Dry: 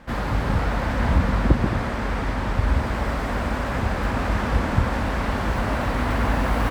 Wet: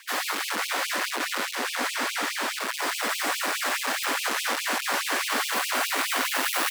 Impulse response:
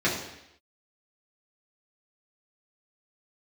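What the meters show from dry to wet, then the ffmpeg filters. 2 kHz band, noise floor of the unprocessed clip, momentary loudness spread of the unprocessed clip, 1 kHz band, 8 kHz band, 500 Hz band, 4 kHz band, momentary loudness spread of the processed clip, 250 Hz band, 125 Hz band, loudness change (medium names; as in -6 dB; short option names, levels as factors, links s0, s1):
+3.0 dB, -27 dBFS, 5 LU, -2.0 dB, +15.0 dB, -6.5 dB, +9.5 dB, 3 LU, -13.0 dB, under -35 dB, -2.0 dB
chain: -filter_complex "[0:a]asoftclip=type=hard:threshold=0.0841,afreqshift=25,crystalizer=i=7:c=0,asplit=2[s0][s1];[1:a]atrim=start_sample=2205,asetrate=28665,aresample=44100[s2];[s1][s2]afir=irnorm=-1:irlink=0,volume=0.0631[s3];[s0][s3]amix=inputs=2:normalize=0,afftfilt=real='re*gte(b*sr/1024,210*pow(2400/210,0.5+0.5*sin(2*PI*4.8*pts/sr)))':imag='im*gte(b*sr/1024,210*pow(2400/210,0.5+0.5*sin(2*PI*4.8*pts/sr)))':win_size=1024:overlap=0.75,volume=0.75"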